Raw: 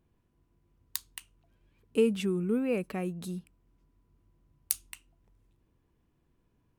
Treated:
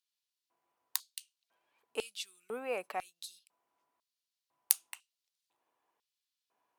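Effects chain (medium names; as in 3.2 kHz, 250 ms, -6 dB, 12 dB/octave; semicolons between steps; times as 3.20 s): LFO high-pass square 1 Hz 770–4200 Hz; Chebyshev shaper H 3 -15 dB, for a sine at -6.5 dBFS; trim +5 dB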